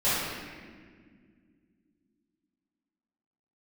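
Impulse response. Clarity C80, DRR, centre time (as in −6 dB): 0.0 dB, −15.0 dB, 124 ms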